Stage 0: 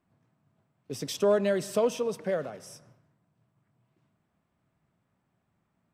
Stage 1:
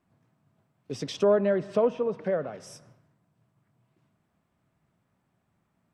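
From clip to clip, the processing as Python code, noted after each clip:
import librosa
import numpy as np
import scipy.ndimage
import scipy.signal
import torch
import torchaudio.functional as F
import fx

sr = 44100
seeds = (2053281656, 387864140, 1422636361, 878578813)

y = fx.env_lowpass_down(x, sr, base_hz=1700.0, full_db=-27.0)
y = y * 10.0 ** (2.0 / 20.0)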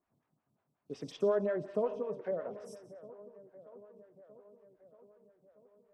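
y = fx.echo_wet_lowpass(x, sr, ms=632, feedback_pct=67, hz=1300.0, wet_db=-17)
y = fx.rev_gated(y, sr, seeds[0], gate_ms=320, shape='falling', drr_db=10.5)
y = fx.stagger_phaser(y, sr, hz=5.5)
y = y * 10.0 ** (-7.0 / 20.0)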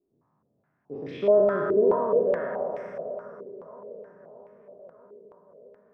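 y = fx.spec_trails(x, sr, decay_s=2.49)
y = fx.echo_feedback(y, sr, ms=322, feedback_pct=48, wet_db=-8.0)
y = fx.filter_held_lowpass(y, sr, hz=4.7, low_hz=400.0, high_hz=2200.0)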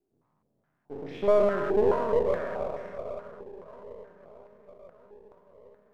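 y = np.where(x < 0.0, 10.0 ** (-7.0 / 20.0) * x, x)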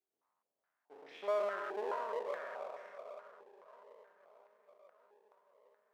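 y = scipy.signal.sosfilt(scipy.signal.butter(2, 800.0, 'highpass', fs=sr, output='sos'), x)
y = y * 10.0 ** (-6.0 / 20.0)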